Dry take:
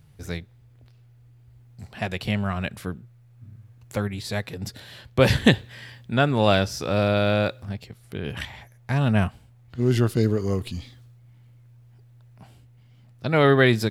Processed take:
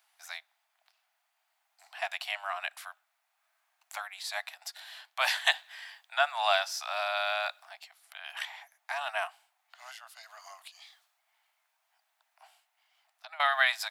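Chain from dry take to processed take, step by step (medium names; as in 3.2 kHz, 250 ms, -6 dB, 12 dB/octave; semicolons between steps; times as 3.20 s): steep high-pass 660 Hz 96 dB/octave; 9.89–13.40 s: compression 12:1, threshold -43 dBFS, peak gain reduction 21.5 dB; trim -2.5 dB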